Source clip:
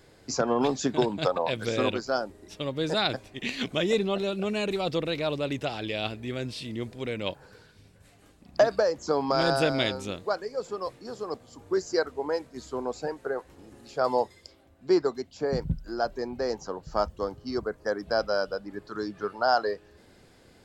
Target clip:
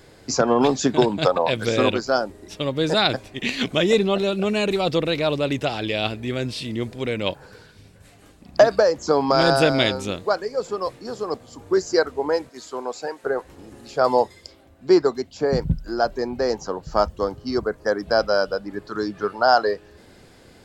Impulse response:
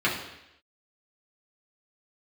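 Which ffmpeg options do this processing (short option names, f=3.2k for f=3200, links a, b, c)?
-filter_complex "[0:a]asettb=1/sr,asplit=3[a][b][c];[a]atrim=end=12.494[d];[b]atrim=start=12.49:end=13.24,asetpts=PTS-STARTPTS,afade=t=in:d=0.004:c=qsin,afade=t=out:st=0.746:d=0.004:c=qsin,highpass=f=670:p=1[e];[c]atrim=start=13.236[f];[d][e]acrossfade=d=0.004:c1=hsin:c2=qsin[g];[g][f]acrossfade=d=0.004:c1=qsin:c2=hsin,volume=7dB"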